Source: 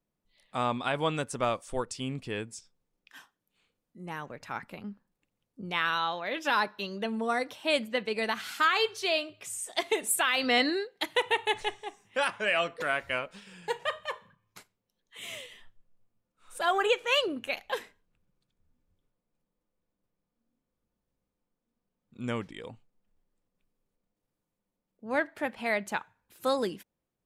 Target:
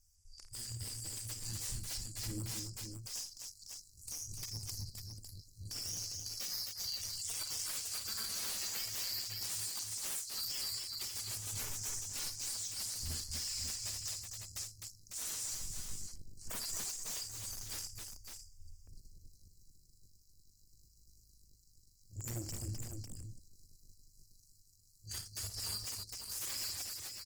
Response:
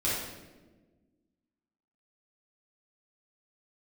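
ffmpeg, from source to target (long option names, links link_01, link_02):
-af "afftfilt=real='re*(1-between(b*sr/4096,110,4600))':imag='im*(1-between(b*sr/4096,110,4600))':win_size=4096:overlap=0.75,superequalizer=7b=0.251:8b=2.51:12b=3.55:14b=2.24:15b=2.24,acompressor=threshold=-49dB:ratio=6,aeval=exprs='0.02*sin(PI/2*8.91*val(0)/0.02)':channel_layout=same,aecho=1:1:51|85|257|551:0.355|0.168|0.562|0.501,volume=-4dB" -ar 48000 -c:a libopus -b:a 16k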